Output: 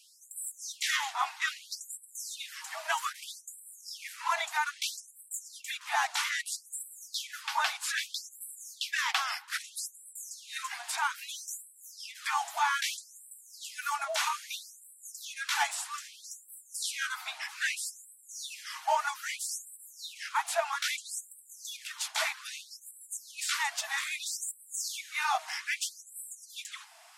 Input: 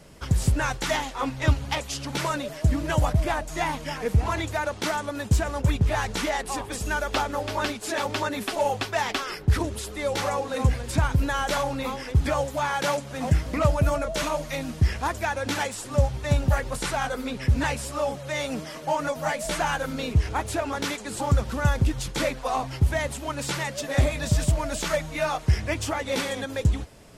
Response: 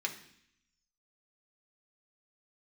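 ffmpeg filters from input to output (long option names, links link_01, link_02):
-af "afftfilt=real='re*gte(b*sr/1024,620*pow(7700/620,0.5+0.5*sin(2*PI*0.62*pts/sr)))':imag='im*gte(b*sr/1024,620*pow(7700/620,0.5+0.5*sin(2*PI*0.62*pts/sr)))':win_size=1024:overlap=0.75"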